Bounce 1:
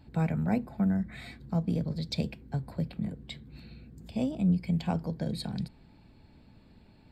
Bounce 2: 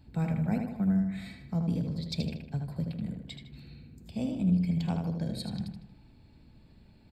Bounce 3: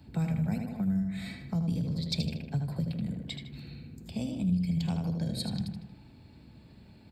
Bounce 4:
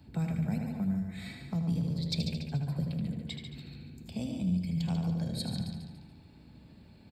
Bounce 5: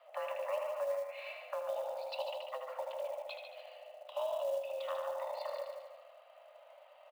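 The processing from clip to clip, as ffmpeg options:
ffmpeg -i in.wav -filter_complex "[0:a]equalizer=frequency=890:width=0.3:gain=-5.5,asplit=2[link_01][link_02];[link_02]adelay=78,lowpass=frequency=4500:poles=1,volume=-4.5dB,asplit=2[link_03][link_04];[link_04]adelay=78,lowpass=frequency=4500:poles=1,volume=0.5,asplit=2[link_05][link_06];[link_06]adelay=78,lowpass=frequency=4500:poles=1,volume=0.5,asplit=2[link_07][link_08];[link_08]adelay=78,lowpass=frequency=4500:poles=1,volume=0.5,asplit=2[link_09][link_10];[link_10]adelay=78,lowpass=frequency=4500:poles=1,volume=0.5,asplit=2[link_11][link_12];[link_12]adelay=78,lowpass=frequency=4500:poles=1,volume=0.5[link_13];[link_01][link_03][link_05][link_07][link_09][link_11][link_13]amix=inputs=7:normalize=0" out.wav
ffmpeg -i in.wav -filter_complex "[0:a]acrossover=split=140|3000[link_01][link_02][link_03];[link_02]acompressor=threshold=-39dB:ratio=6[link_04];[link_01][link_04][link_03]amix=inputs=3:normalize=0,highpass=70,volume=5dB" out.wav
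ffmpeg -i in.wav -af "aecho=1:1:143|286|429|572|715:0.398|0.159|0.0637|0.0255|0.0102,volume=-2dB" out.wav
ffmpeg -i in.wav -af "highpass=frequency=230:width_type=q:width=0.5412,highpass=frequency=230:width_type=q:width=1.307,lowpass=frequency=3000:width_type=q:width=0.5176,lowpass=frequency=3000:width_type=q:width=0.7071,lowpass=frequency=3000:width_type=q:width=1.932,afreqshift=370,acrusher=bits=6:mode=log:mix=0:aa=0.000001,volume=2dB" out.wav

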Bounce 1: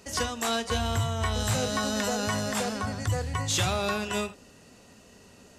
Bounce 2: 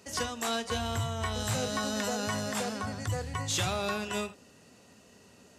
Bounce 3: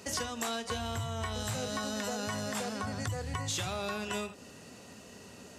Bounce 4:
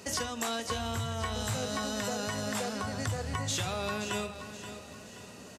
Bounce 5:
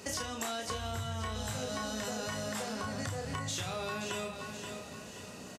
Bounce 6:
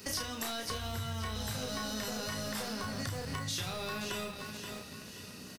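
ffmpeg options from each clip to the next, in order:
ffmpeg -i in.wav -af "highpass=80,volume=-3.5dB" out.wav
ffmpeg -i in.wav -af "acompressor=threshold=-39dB:ratio=6,volume=6.5dB" out.wav
ffmpeg -i in.wav -af "aecho=1:1:526|1052|1578|2104:0.282|0.118|0.0497|0.0209,volume=1.5dB" out.wav
ffmpeg -i in.wav -filter_complex "[0:a]asplit=2[link_01][link_02];[link_02]adelay=32,volume=-4.5dB[link_03];[link_01][link_03]amix=inputs=2:normalize=0,acompressor=threshold=-34dB:ratio=4" out.wav
ffmpeg -i in.wav -filter_complex "[0:a]acrossover=split=500|980[link_01][link_02][link_03];[link_02]acrusher=bits=5:dc=4:mix=0:aa=0.000001[link_04];[link_03]aexciter=amount=1.7:drive=0.9:freq=4100[link_05];[link_01][link_04][link_05]amix=inputs=3:normalize=0" out.wav

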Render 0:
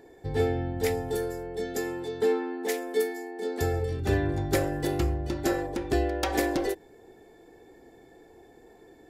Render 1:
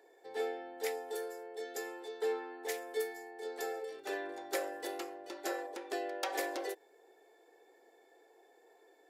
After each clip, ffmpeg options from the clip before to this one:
ffmpeg -i in.wav -af "highpass=frequency=430:width=0.5412,highpass=frequency=430:width=1.3066,volume=-7dB" out.wav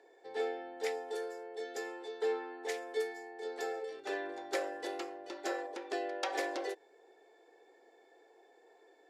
ffmpeg -i in.wav -af "lowpass=6600,volume=1dB" out.wav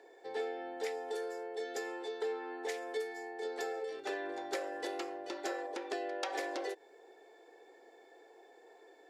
ffmpeg -i in.wav -af "acompressor=threshold=-40dB:ratio=3,volume=4dB" out.wav

